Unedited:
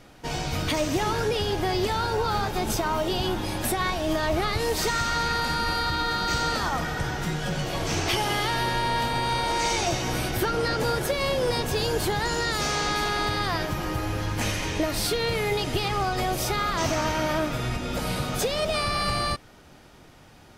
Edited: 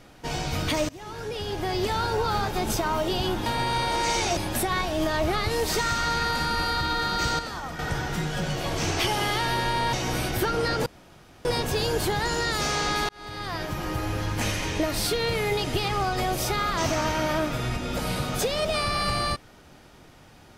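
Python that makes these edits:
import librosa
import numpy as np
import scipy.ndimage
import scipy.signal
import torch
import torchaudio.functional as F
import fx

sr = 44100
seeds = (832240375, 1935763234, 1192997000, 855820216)

y = fx.edit(x, sr, fx.fade_in_from(start_s=0.89, length_s=1.08, floor_db=-23.5),
    fx.clip_gain(start_s=6.48, length_s=0.4, db=-7.5),
    fx.move(start_s=9.02, length_s=0.91, to_s=3.46),
    fx.room_tone_fill(start_s=10.86, length_s=0.59),
    fx.fade_in_span(start_s=13.09, length_s=1.14, curve='qsin'), tone=tone)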